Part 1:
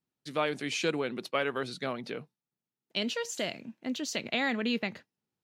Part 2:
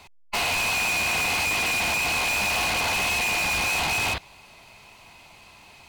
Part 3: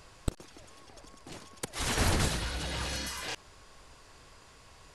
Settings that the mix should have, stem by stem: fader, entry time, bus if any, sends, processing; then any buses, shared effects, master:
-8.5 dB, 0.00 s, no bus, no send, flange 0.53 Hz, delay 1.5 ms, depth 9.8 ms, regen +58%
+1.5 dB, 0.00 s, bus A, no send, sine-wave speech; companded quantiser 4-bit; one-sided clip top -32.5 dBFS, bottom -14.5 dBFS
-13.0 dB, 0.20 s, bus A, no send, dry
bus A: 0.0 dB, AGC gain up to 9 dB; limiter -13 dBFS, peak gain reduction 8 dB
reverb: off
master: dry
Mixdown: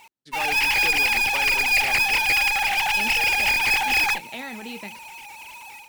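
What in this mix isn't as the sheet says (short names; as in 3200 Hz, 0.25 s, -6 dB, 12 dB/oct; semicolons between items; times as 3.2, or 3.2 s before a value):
stem 1 -8.5 dB -> -1.5 dB; stem 3: muted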